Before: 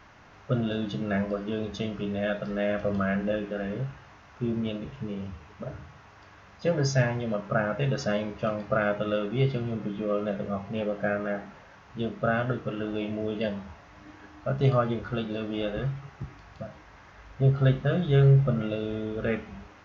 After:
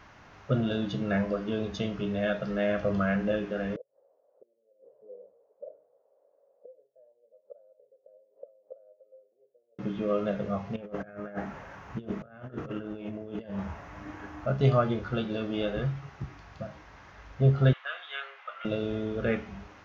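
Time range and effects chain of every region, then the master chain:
3.76–9.79 flipped gate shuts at -23 dBFS, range -25 dB + Butterworth band-pass 530 Hz, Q 4.2
10.76–14.47 bell 4300 Hz -8.5 dB 1.3 oct + negative-ratio compressor -36 dBFS, ratio -0.5
17.73–18.65 inverse Chebyshev high-pass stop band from 160 Hz, stop band 80 dB + resonant high shelf 4000 Hz -9.5 dB, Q 1.5
whole clip: dry

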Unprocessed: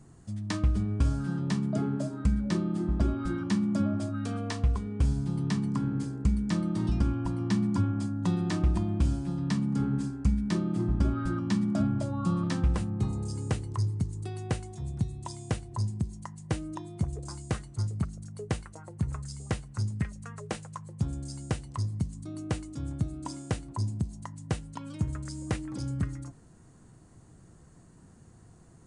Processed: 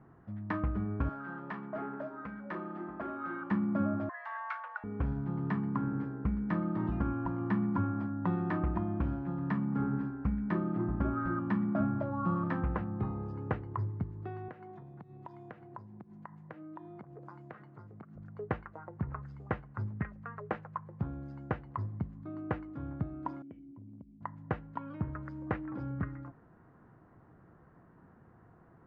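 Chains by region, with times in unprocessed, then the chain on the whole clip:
1.09–3.51 weighting filter A + hard clip -32.5 dBFS
4.09–4.84 frequency shift +420 Hz + steep high-pass 910 Hz 48 dB/oct
14.48–18.16 HPF 130 Hz 24 dB/oct + compressor 12:1, threshold -41 dBFS
23.42–24.21 vocal tract filter i + compressor 5:1, threshold -41 dBFS
whole clip: LPF 1600 Hz 24 dB/oct; tilt +3 dB/oct; gain +3 dB

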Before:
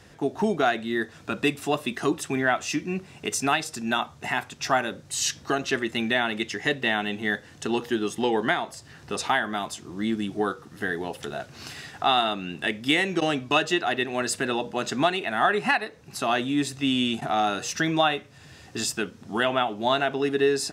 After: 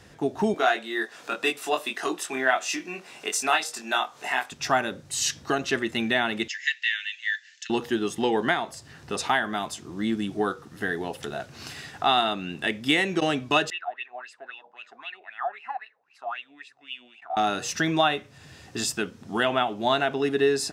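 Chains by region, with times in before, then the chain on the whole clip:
0.54–4.52 HPF 470 Hz + upward compressor, threshold -39 dBFS + doubler 23 ms -4 dB
6.48–7.7 Chebyshev band-pass 1700–7200 Hz, order 4 + comb 6.3 ms, depth 41%
13.7–17.37 low shelf 220 Hz -9.5 dB + wah 3.8 Hz 690–2800 Hz, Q 8.4
whole clip: dry

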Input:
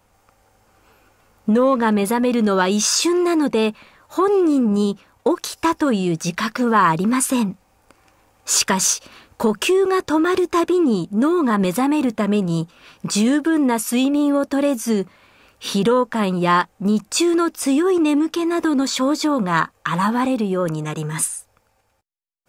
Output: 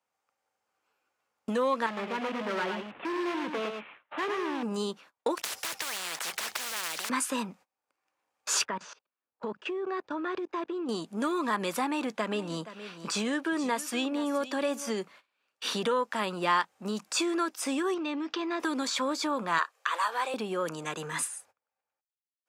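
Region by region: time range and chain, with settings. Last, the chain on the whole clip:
1.86–4.63 CVSD 16 kbps + hard clip -21 dBFS + echo 0.108 s -6 dB
5.37–7.1 block floating point 5-bit + spectral compressor 10:1
8.65–10.89 level quantiser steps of 21 dB + tape spacing loss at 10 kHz 35 dB
11.84–14.98 bell 13000 Hz -5 dB 1.3 oct + echo 0.472 s -16.5 dB
17.94–18.6 LPF 5200 Hz 24 dB/oct + compressor 3:1, threshold -19 dBFS
19.58–20.34 steep high-pass 390 Hz + notch 890 Hz, Q 13
whole clip: weighting filter A; gate -46 dBFS, range -27 dB; three-band squash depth 40%; gain -7 dB

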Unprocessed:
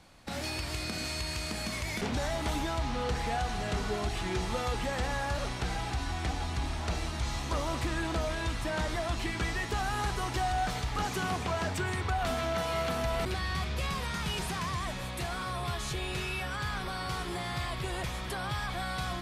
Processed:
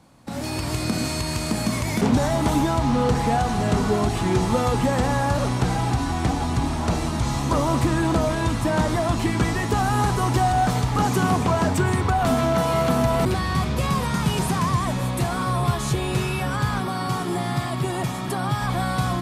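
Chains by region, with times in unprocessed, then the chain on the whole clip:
16.8–18.61 HPF 120 Hz + notch comb 510 Hz
whole clip: high shelf 8500 Hz +9.5 dB; AGC gain up to 8 dB; ten-band EQ 125 Hz +12 dB, 250 Hz +11 dB, 500 Hz +5 dB, 1000 Hz +8 dB, 8000 Hz +3 dB; gain -5.5 dB

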